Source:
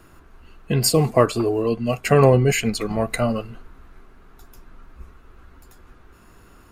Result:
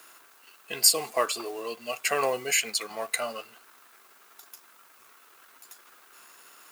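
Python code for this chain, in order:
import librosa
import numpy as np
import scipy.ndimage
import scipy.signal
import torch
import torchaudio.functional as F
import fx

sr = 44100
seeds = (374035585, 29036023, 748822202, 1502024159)

y = fx.law_mismatch(x, sr, coded='mu')
y = scipy.signal.sosfilt(scipy.signal.butter(2, 610.0, 'highpass', fs=sr, output='sos'), y)
y = fx.high_shelf(y, sr, hz=2200.0, db=10.5)
y = fx.dmg_noise_colour(y, sr, seeds[0], colour='blue', level_db=-52.0)
y = F.gain(torch.from_numpy(y), -8.0).numpy()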